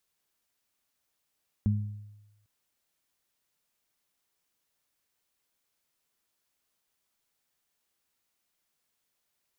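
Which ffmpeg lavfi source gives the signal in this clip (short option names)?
-f lavfi -i "aevalsrc='0.0841*pow(10,-3*t/1.02)*sin(2*PI*104*t)+0.0596*pow(10,-3*t/0.55)*sin(2*PI*208*t)':d=0.8:s=44100"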